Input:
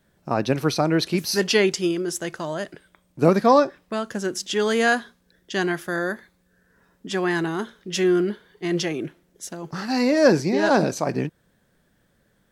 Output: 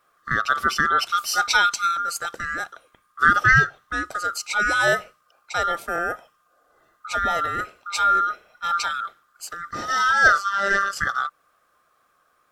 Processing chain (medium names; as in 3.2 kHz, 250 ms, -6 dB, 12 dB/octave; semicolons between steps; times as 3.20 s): split-band scrambler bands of 1 kHz; 10.38–10.93 s: robot voice 198 Hz